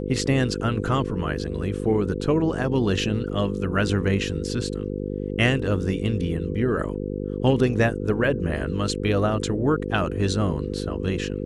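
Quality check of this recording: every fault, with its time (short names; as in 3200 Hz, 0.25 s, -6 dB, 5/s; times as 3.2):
buzz 50 Hz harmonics 10 -29 dBFS
3.29 gap 3.4 ms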